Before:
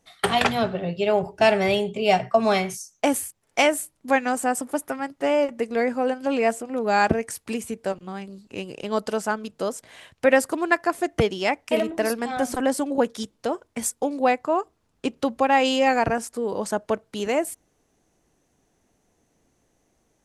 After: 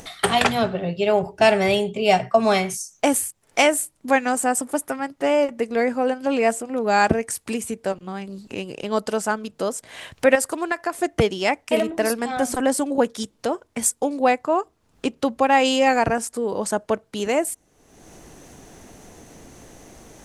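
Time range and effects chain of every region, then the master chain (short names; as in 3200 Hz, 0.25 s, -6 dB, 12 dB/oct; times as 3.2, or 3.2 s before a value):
10.35–10.99 bell 200 Hz -8.5 dB 1.1 oct + compressor 5:1, threshold -20 dBFS
whole clip: upward compressor, threshold -29 dBFS; dynamic EQ 8500 Hz, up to +5 dB, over -46 dBFS, Q 1.4; gain +2 dB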